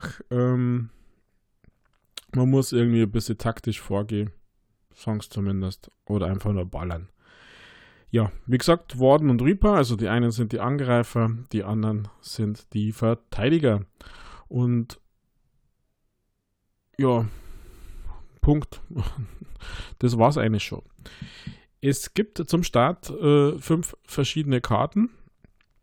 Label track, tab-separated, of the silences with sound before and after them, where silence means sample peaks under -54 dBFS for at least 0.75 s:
15.060000	16.940000	silence